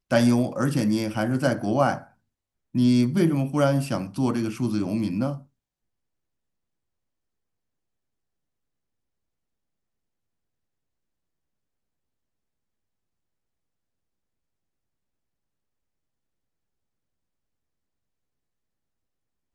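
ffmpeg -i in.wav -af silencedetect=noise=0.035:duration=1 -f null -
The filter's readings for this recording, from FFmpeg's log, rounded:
silence_start: 5.35
silence_end: 19.55 | silence_duration: 14.20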